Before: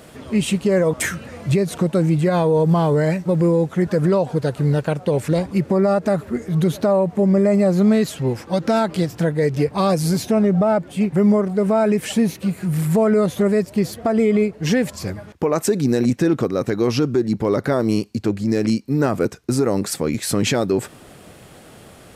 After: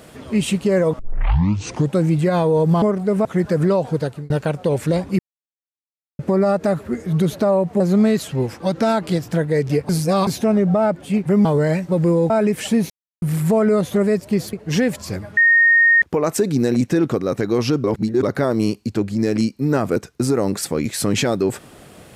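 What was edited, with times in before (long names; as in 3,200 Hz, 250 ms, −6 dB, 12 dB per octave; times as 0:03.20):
0:00.99: tape start 0.99 s
0:02.82–0:03.67: swap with 0:11.32–0:11.75
0:04.41–0:04.72: fade out
0:05.61: splice in silence 1.00 s
0:07.22–0:07.67: remove
0:09.76–0:10.14: reverse
0:12.35–0:12.67: silence
0:13.98–0:14.47: remove
0:15.31: insert tone 1,850 Hz −9.5 dBFS 0.65 s
0:17.13–0:17.52: reverse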